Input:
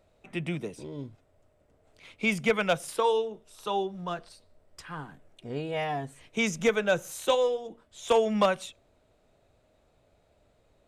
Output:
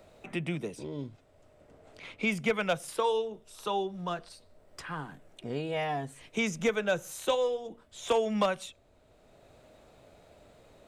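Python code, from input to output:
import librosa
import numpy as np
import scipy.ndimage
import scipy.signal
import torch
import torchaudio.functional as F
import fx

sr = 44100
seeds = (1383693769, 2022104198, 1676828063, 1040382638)

y = fx.high_shelf(x, sr, hz=9800.0, db=-10.0, at=(0.79, 2.27))
y = fx.band_squash(y, sr, depth_pct=40)
y = y * 10.0 ** (-2.0 / 20.0)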